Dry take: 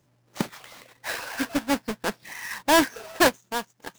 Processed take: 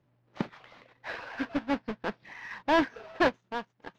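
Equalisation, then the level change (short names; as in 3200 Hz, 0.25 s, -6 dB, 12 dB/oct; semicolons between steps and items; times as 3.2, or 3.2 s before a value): air absorption 260 m; high shelf 12000 Hz -5 dB; -4.0 dB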